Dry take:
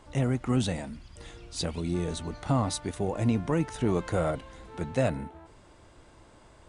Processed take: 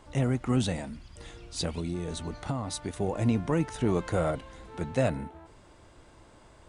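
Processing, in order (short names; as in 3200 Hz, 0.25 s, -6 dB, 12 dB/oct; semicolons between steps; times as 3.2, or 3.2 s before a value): 1.79–2.98 compressor 10:1, threshold -28 dBFS, peak gain reduction 8 dB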